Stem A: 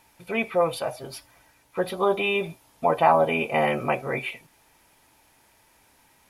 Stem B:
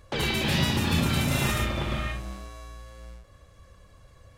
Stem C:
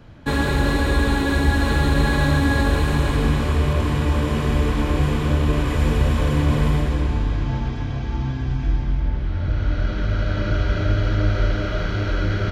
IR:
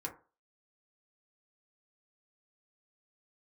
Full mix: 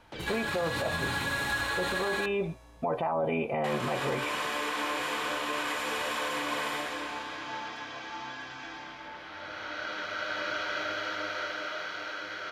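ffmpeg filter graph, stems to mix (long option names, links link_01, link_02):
-filter_complex "[0:a]lowpass=frequency=1100:poles=1,volume=2.5dB[link_01];[1:a]volume=-15.5dB,asplit=2[link_02][link_03];[link_03]volume=-3.5dB[link_04];[2:a]highpass=860,dynaudnorm=framelen=160:gausssize=17:maxgain=5.5dB,volume=-8.5dB,asplit=3[link_05][link_06][link_07];[link_05]atrim=end=2.26,asetpts=PTS-STARTPTS,afade=type=out:start_time=2.256:duration=0.004:curve=hsin[link_08];[link_06]atrim=start=2.26:end=3.64,asetpts=PTS-STARTPTS,volume=0[link_09];[link_07]atrim=start=3.64,asetpts=PTS-STARTPTS,afade=type=in:duration=0.004:curve=hsin[link_10];[link_08][link_09][link_10]concat=n=3:v=0:a=1,asplit=2[link_11][link_12];[link_12]volume=-4dB[link_13];[link_01][link_02]amix=inputs=2:normalize=0,alimiter=limit=-17dB:level=0:latency=1:release=13,volume=0dB[link_14];[3:a]atrim=start_sample=2205[link_15];[link_04][link_13]amix=inputs=2:normalize=0[link_16];[link_16][link_15]afir=irnorm=-1:irlink=0[link_17];[link_11][link_14][link_17]amix=inputs=3:normalize=0,alimiter=limit=-21.5dB:level=0:latency=1:release=99"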